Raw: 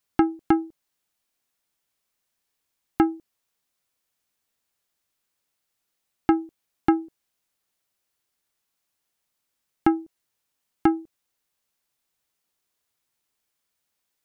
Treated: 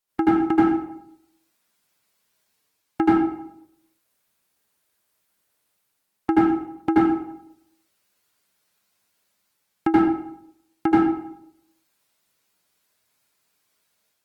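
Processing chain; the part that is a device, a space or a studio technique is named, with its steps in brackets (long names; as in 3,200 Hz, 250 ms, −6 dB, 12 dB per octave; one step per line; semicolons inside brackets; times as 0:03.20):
far-field microphone of a smart speaker (convolution reverb RT60 0.75 s, pre-delay 75 ms, DRR −8.5 dB; high-pass filter 83 Hz 6 dB per octave; automatic gain control gain up to 4.5 dB; level −4 dB; Opus 24 kbit/s 48,000 Hz)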